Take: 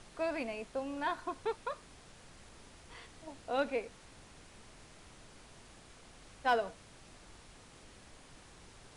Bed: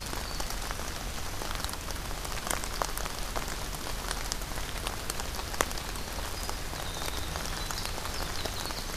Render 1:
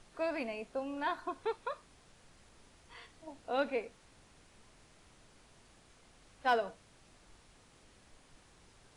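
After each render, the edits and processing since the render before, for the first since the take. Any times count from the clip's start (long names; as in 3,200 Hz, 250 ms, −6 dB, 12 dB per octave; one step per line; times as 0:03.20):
noise reduction from a noise print 6 dB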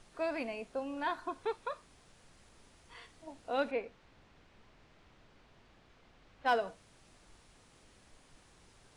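0:03.71–0:06.46: low-pass filter 3,700 Hz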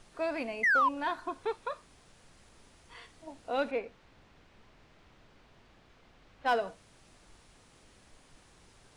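0:00.63–0:00.89: sound drawn into the spectrogram fall 960–2,100 Hz −26 dBFS
in parallel at −10.5 dB: hard clipping −30 dBFS, distortion −9 dB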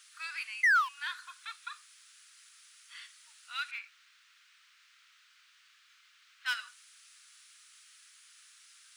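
elliptic high-pass filter 1,300 Hz, stop band 60 dB
spectral tilt +3 dB per octave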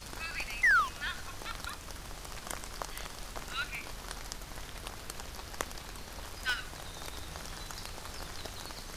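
mix in bed −8.5 dB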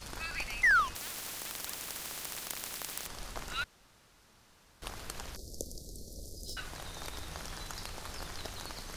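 0:00.95–0:03.07: every bin compressed towards the loudest bin 10 to 1
0:03.64–0:04.82: fill with room tone
0:05.36–0:06.57: inverse Chebyshev band-stop filter 1,000–2,600 Hz, stop band 50 dB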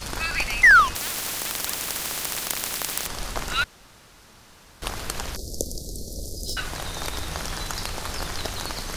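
level +12 dB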